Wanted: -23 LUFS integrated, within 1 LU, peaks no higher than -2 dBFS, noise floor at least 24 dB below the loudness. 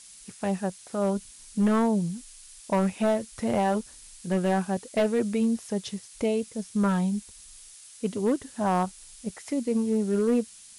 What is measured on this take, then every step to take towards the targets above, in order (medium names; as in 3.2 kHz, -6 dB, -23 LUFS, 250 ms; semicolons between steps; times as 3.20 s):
clipped samples 1.1%; clipping level -17.5 dBFS; noise floor -49 dBFS; noise floor target -52 dBFS; loudness -27.5 LUFS; peak level -17.5 dBFS; loudness target -23.0 LUFS
-> clip repair -17.5 dBFS; noise reduction 6 dB, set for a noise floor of -49 dBFS; trim +4.5 dB